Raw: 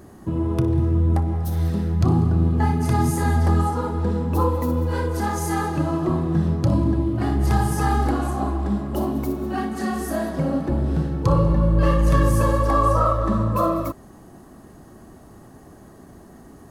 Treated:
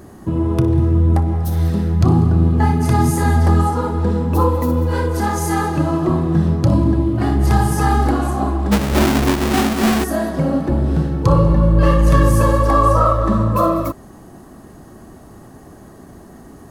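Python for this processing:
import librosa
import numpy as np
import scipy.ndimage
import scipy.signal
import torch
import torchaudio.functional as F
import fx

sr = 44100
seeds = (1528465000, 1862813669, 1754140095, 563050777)

y = fx.halfwave_hold(x, sr, at=(8.71, 10.03), fade=0.02)
y = y * 10.0 ** (5.0 / 20.0)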